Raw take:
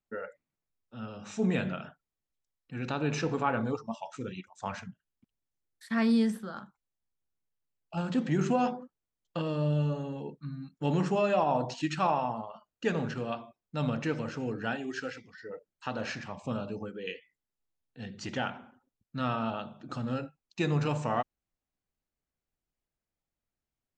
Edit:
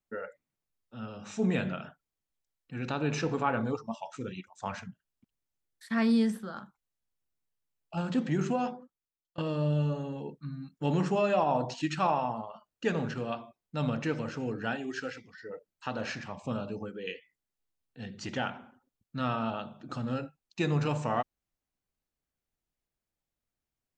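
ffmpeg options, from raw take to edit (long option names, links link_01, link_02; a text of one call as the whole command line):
ffmpeg -i in.wav -filter_complex "[0:a]asplit=2[link_01][link_02];[link_01]atrim=end=9.38,asetpts=PTS-STARTPTS,afade=type=out:start_time=8.18:duration=1.2:silence=0.0841395[link_03];[link_02]atrim=start=9.38,asetpts=PTS-STARTPTS,afade=type=in:duration=0.004:curve=hsin:silence=0.0841395[link_04];[link_03][link_04]concat=n=2:v=0:a=1" out.wav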